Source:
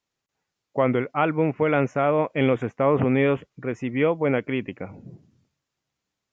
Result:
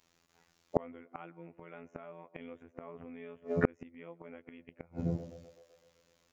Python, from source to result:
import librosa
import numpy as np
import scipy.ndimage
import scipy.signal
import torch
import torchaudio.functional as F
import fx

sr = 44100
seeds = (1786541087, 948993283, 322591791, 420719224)

y = fx.robotise(x, sr, hz=84.6)
y = fx.echo_banded(y, sr, ms=127, feedback_pct=66, hz=520.0, wet_db=-19.5)
y = fx.gate_flip(y, sr, shuts_db=-22.0, range_db=-38)
y = F.gain(torch.from_numpy(y), 13.0).numpy()